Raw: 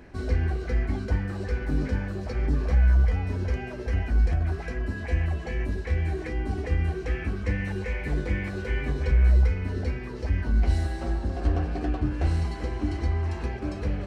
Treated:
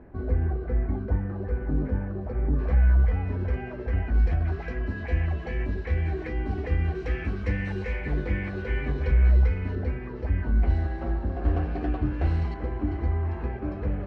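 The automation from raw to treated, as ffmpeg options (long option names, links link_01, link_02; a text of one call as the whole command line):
ffmpeg -i in.wav -af "asetnsamples=nb_out_samples=441:pad=0,asendcmd='2.59 lowpass f 2100;4.14 lowpass f 3300;6.95 lowpass f 4500;7.99 lowpass f 3100;9.75 lowpass f 2000;11.48 lowpass f 2900;12.54 lowpass f 1700',lowpass=1100" out.wav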